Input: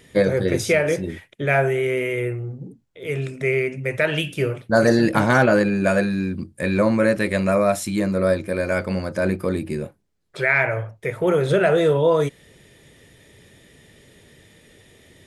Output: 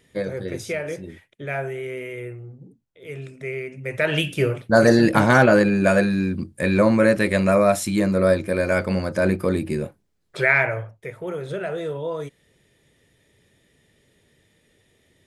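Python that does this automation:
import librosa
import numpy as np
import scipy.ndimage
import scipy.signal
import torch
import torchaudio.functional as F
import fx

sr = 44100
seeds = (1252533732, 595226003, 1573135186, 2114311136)

y = fx.gain(x, sr, db=fx.line((3.68, -9.0), (4.16, 1.5), (10.5, 1.5), (11.25, -11.0)))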